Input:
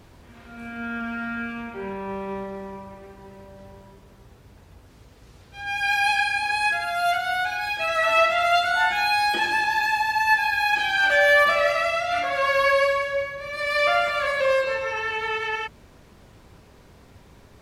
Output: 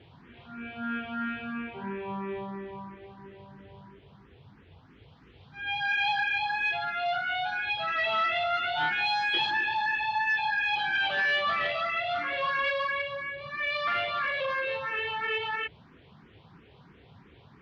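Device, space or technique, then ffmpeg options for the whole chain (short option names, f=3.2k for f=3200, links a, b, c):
barber-pole phaser into a guitar amplifier: -filter_complex "[0:a]asettb=1/sr,asplit=3[a][b][c];[a]atrim=end=9.054[d];[b]atrim=start=9.05:end=9.51,asetpts=PTS-STARTPTS,afade=t=in:d=0.004:c=qsin,afade=t=out:st=0.456:d=0.004:c=qsin,aemphasis=mode=production:type=75fm[e];[c]atrim=start=9.506[f];[d][e]acrossfade=d=0.004:c1=hsin:c2=qsin[g];[g][f]acrossfade=d=0.004:c1=qsin:c2=hsin,asplit=2[h][i];[i]afreqshift=3[j];[h][j]amix=inputs=2:normalize=1,asoftclip=type=tanh:threshold=-22.5dB,highpass=91,equalizer=f=150:t=q:w=4:g=5,equalizer=f=590:t=q:w=4:g=-7,equalizer=f=3.2k:t=q:w=4:g=5,lowpass=f=3.7k:w=0.5412,lowpass=f=3.7k:w=1.3066"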